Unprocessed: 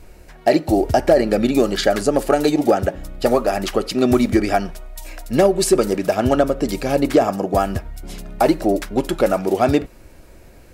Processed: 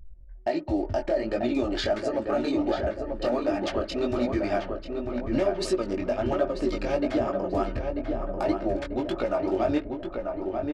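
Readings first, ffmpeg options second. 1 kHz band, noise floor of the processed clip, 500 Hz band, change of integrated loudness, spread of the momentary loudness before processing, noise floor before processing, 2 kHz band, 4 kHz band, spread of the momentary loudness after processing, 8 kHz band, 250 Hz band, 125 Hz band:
−11.0 dB, −41 dBFS, −9.0 dB, −9.5 dB, 9 LU, −45 dBFS, −9.5 dB, −9.5 dB, 5 LU, −17.5 dB, −8.5 dB, −10.0 dB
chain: -filter_complex "[0:a]lowpass=4600,anlmdn=15.8,equalizer=frequency=240:width=1.7:gain=-4,aecho=1:1:3.3:0.5,alimiter=limit=-14dB:level=0:latency=1:release=425,flanger=delay=16:depth=6.1:speed=1.4,asplit=2[link_01][link_02];[link_02]adelay=940,lowpass=frequency=1900:poles=1,volume=-4.5dB,asplit=2[link_03][link_04];[link_04]adelay=940,lowpass=frequency=1900:poles=1,volume=0.54,asplit=2[link_05][link_06];[link_06]adelay=940,lowpass=frequency=1900:poles=1,volume=0.54,asplit=2[link_07][link_08];[link_08]adelay=940,lowpass=frequency=1900:poles=1,volume=0.54,asplit=2[link_09][link_10];[link_10]adelay=940,lowpass=frequency=1900:poles=1,volume=0.54,asplit=2[link_11][link_12];[link_12]adelay=940,lowpass=frequency=1900:poles=1,volume=0.54,asplit=2[link_13][link_14];[link_14]adelay=940,lowpass=frequency=1900:poles=1,volume=0.54[link_15];[link_01][link_03][link_05][link_07][link_09][link_11][link_13][link_15]amix=inputs=8:normalize=0"

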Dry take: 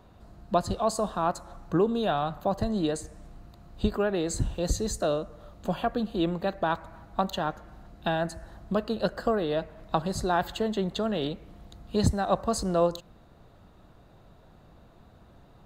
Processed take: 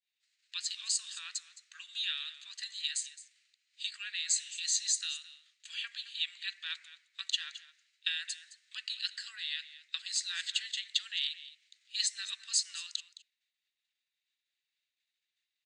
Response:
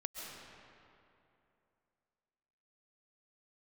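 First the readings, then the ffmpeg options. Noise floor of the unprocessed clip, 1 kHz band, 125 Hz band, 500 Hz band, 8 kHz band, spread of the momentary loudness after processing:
−55 dBFS, −31.0 dB, below −40 dB, below −40 dB, +6.0 dB, 12 LU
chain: -filter_complex "[0:a]agate=range=-33dB:threshold=-40dB:ratio=3:detection=peak,asuperpass=centerf=4300:order=12:qfactor=0.64,asplit=2[link_01][link_02];[link_02]aecho=0:1:215:0.158[link_03];[link_01][link_03]amix=inputs=2:normalize=0,volume=6.5dB"

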